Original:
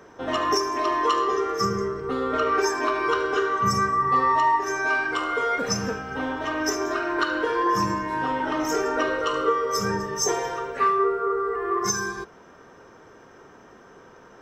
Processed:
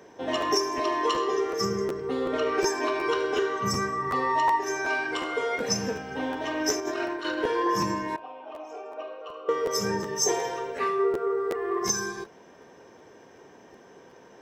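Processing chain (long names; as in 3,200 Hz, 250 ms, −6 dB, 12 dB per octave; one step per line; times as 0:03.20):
high-pass filter 170 Hz 6 dB per octave
parametric band 1,300 Hz −13 dB 0.41 octaves
0:06.80–0:07.39: compressor whose output falls as the input rises −30 dBFS, ratio −0.5
0:08.16–0:09.49: formant filter a
regular buffer underruns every 0.37 s, samples 512, repeat, from 0:00.40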